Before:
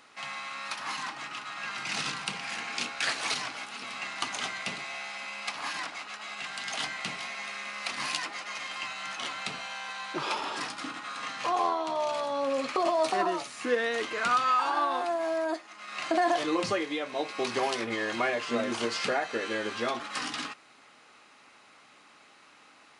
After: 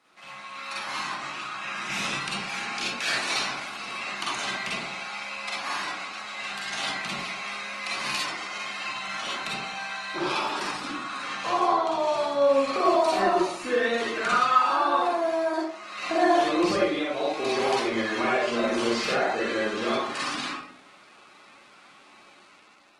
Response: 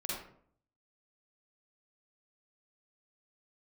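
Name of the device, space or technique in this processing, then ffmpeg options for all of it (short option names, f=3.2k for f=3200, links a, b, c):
far-field microphone of a smart speaker: -filter_complex "[0:a]asettb=1/sr,asplit=3[a][b][c];[a]atrim=end=1.504[d];[b]atrim=start=1.5:end=2.15,asetpts=PTS-STARTPTS,afade=t=in:d=0.004:c=qsin,afade=t=out:st=0.646:d=0.004:c=qsin,bandreject=f=4.4k:w=6.2[e];[c]atrim=start=2.146[f];[d][e]acrossfade=d=0.004:c1=hsin:c2=qsin[g];[g][f]acrossfade=d=0.004:c1=qsin:c2=hsin[h];[1:a]atrim=start_sample=2205[i];[h][i]afir=irnorm=-1:irlink=0,highpass=f=100:w=0.5412,highpass=f=100:w=1.3066,dynaudnorm=f=250:g=5:m=6dB,volume=-4dB" -ar 48000 -c:a libopus -b:a 20k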